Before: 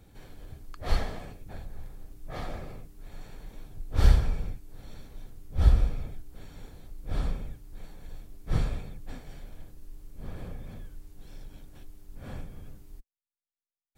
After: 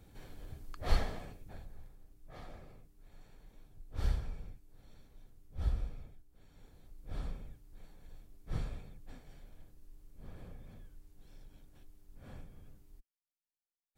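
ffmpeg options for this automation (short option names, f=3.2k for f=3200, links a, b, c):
-af "volume=6dB,afade=t=out:st=0.91:d=1.08:silence=0.298538,afade=t=out:st=5.99:d=0.29:silence=0.501187,afade=t=in:st=6.28:d=0.6:silence=0.354813"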